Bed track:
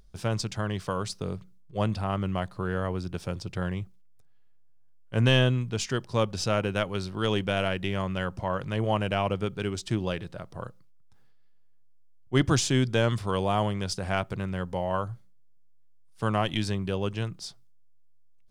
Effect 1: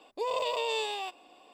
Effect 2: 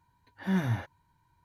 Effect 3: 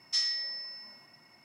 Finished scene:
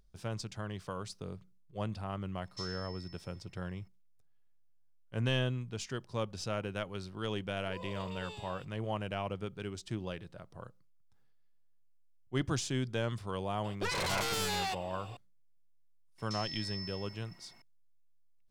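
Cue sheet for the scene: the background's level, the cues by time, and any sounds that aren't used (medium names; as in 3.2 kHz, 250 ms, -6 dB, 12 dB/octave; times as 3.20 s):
bed track -10 dB
2.44 s: add 3 -15 dB
7.49 s: add 1 -15.5 dB + phase dispersion highs, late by 59 ms, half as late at 1.4 kHz
13.64 s: add 1 -11.5 dB + sine folder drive 14 dB, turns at -19.5 dBFS
16.18 s: add 3 -2 dB + compression, threshold -38 dBFS
not used: 2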